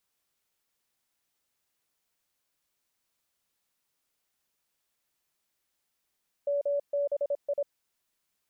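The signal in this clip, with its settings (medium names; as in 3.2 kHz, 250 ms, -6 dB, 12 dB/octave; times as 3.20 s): Morse "MBI" 26 wpm 571 Hz -25 dBFS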